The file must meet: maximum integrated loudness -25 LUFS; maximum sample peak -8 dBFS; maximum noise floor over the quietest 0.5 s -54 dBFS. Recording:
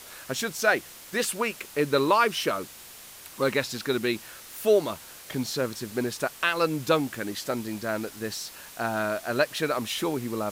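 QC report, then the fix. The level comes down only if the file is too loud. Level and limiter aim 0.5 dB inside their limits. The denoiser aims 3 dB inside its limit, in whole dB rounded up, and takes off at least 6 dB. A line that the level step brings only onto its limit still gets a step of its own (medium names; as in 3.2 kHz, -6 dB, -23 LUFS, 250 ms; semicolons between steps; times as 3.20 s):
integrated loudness -27.5 LUFS: pass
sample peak -9.0 dBFS: pass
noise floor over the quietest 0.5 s -46 dBFS: fail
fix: noise reduction 11 dB, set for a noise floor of -46 dBFS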